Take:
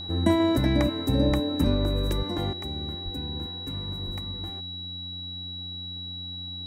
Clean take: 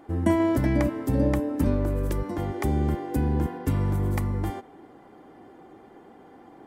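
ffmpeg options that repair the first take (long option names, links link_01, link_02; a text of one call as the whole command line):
ffmpeg -i in.wav -filter_complex "[0:a]bandreject=frequency=90.4:width_type=h:width=4,bandreject=frequency=180.8:width_type=h:width=4,bandreject=frequency=271.2:width_type=h:width=4,bandreject=frequency=3900:width=30,asplit=3[link_01][link_02][link_03];[link_01]afade=type=out:start_time=1.27:duration=0.02[link_04];[link_02]highpass=frequency=140:width=0.5412,highpass=frequency=140:width=1.3066,afade=type=in:start_time=1.27:duration=0.02,afade=type=out:start_time=1.39:duration=0.02[link_05];[link_03]afade=type=in:start_time=1.39:duration=0.02[link_06];[link_04][link_05][link_06]amix=inputs=3:normalize=0,asplit=3[link_07][link_08][link_09];[link_07]afade=type=out:start_time=3.04:duration=0.02[link_10];[link_08]highpass=frequency=140:width=0.5412,highpass=frequency=140:width=1.3066,afade=type=in:start_time=3.04:duration=0.02,afade=type=out:start_time=3.16:duration=0.02[link_11];[link_09]afade=type=in:start_time=3.16:duration=0.02[link_12];[link_10][link_11][link_12]amix=inputs=3:normalize=0,asplit=3[link_13][link_14][link_15];[link_13]afade=type=out:start_time=4.05:duration=0.02[link_16];[link_14]highpass=frequency=140:width=0.5412,highpass=frequency=140:width=1.3066,afade=type=in:start_time=4.05:duration=0.02,afade=type=out:start_time=4.17:duration=0.02[link_17];[link_15]afade=type=in:start_time=4.17:duration=0.02[link_18];[link_16][link_17][link_18]amix=inputs=3:normalize=0,asetnsamples=nb_out_samples=441:pad=0,asendcmd='2.53 volume volume 11.5dB',volume=0dB" out.wav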